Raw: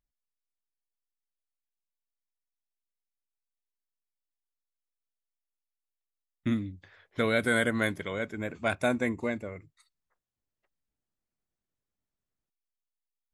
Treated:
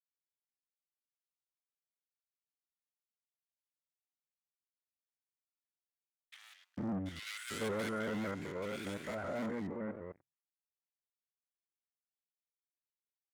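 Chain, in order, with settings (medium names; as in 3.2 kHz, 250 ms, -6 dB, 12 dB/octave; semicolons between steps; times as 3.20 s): spectrogram pixelated in time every 100 ms; Doppler pass-by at 3.72 s, 20 m/s, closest 5.9 m; waveshaping leveller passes 5; high-pass 140 Hz 6 dB/octave; bands offset in time highs, lows 450 ms, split 1.7 kHz; vibrato with a chosen wave saw up 5.2 Hz, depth 100 cents; trim +4 dB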